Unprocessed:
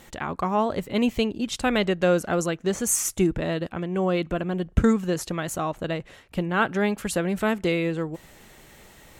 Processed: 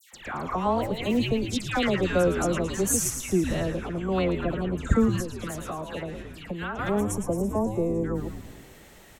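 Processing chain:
all-pass dispersion lows, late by 136 ms, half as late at 1,800 Hz
0:06.89–0:08.04: gain on a spectral selection 1,200–5,400 Hz −25 dB
on a send: echo with shifted repeats 111 ms, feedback 60%, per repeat −110 Hz, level −8.5 dB
0:05.20–0:06.79: on the sum: downward compressor 6 to 1, threshold −28 dBFS, peak gain reduction 11 dB
level −2 dB

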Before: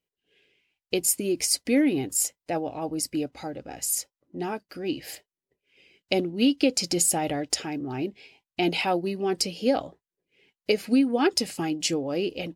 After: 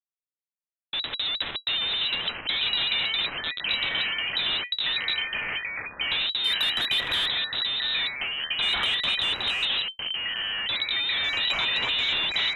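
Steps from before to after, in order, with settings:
comparator with hysteresis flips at −30 dBFS
voice inversion scrambler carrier 3,900 Hz
0:06.44–0:07.26: leveller curve on the samples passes 1
delay with pitch and tempo change per echo 507 ms, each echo −4 semitones, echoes 3

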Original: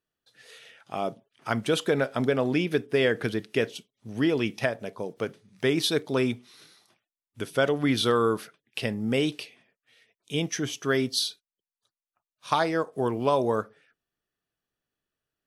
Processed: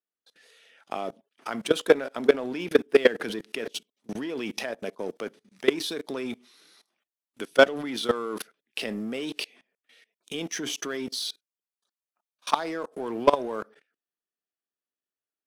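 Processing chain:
high-pass filter 210 Hz 24 dB per octave
output level in coarse steps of 21 dB
leveller curve on the samples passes 1
level +7 dB

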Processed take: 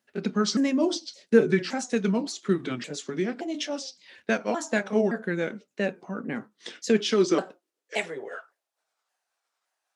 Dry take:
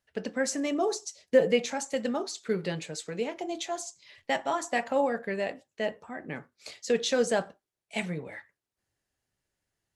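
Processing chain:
pitch shifter swept by a sawtooth −5.5 semitones, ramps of 568 ms
high-pass filter sweep 220 Hz → 800 Hz, 0:06.88–0:09.00
dynamic equaliser 480 Hz, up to −4 dB, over −36 dBFS, Q 0.78
level +4 dB

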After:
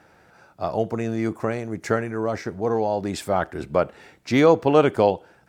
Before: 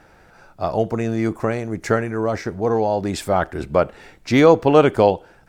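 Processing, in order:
high-pass filter 86 Hz
level −3.5 dB

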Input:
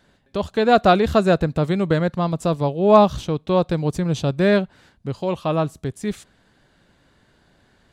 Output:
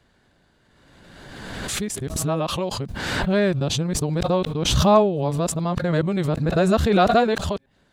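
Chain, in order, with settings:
played backwards from end to start
background raised ahead of every attack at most 31 dB per second
level −3.5 dB

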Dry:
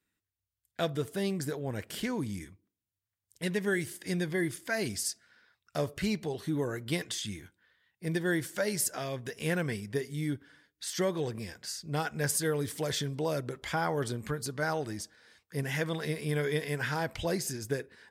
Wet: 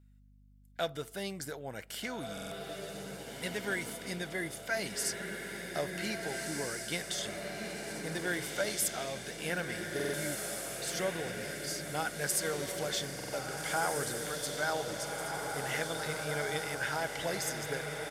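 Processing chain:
high-pass filter 460 Hz 6 dB per octave
comb filter 1.4 ms, depth 31%
feedback delay with all-pass diffusion 1,664 ms, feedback 60%, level −3 dB
mains hum 50 Hz, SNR 24 dB
buffer that repeats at 0:02.33/0:09.95/0:13.15, samples 2,048, times 3
level −1.5 dB

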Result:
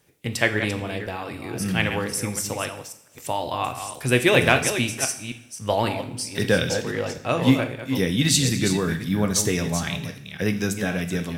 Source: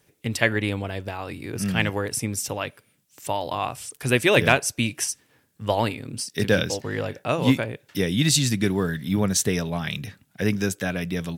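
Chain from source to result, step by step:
delay that plays each chunk backwards 266 ms, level −9 dB
coupled-rooms reverb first 0.58 s, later 1.8 s, from −19 dB, DRR 7 dB

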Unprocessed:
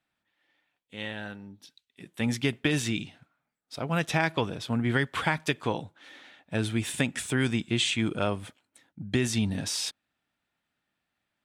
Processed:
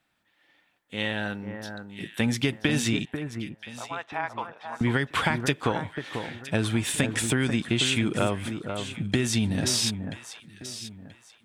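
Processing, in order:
0:03.05–0:04.81: four-pole ladder band-pass 1,100 Hz, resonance 35%
downward compressor 4 to 1, threshold −30 dBFS, peak gain reduction 9 dB
delay that swaps between a low-pass and a high-pass 491 ms, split 1,700 Hz, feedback 51%, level −7 dB
level +8 dB

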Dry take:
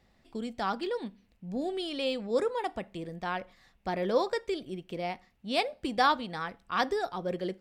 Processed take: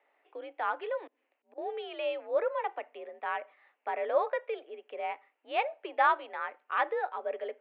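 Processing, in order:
0:01.07–0:01.58: volume swells 186 ms
single-sideband voice off tune +56 Hz 390–2,700 Hz

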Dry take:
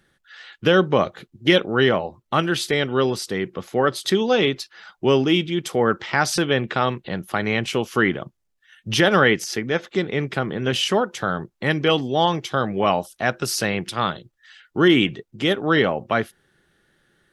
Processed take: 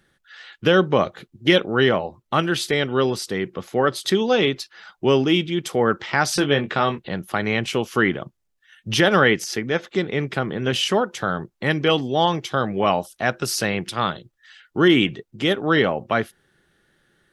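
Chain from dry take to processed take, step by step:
0:06.36–0:06.99: double-tracking delay 21 ms −8 dB

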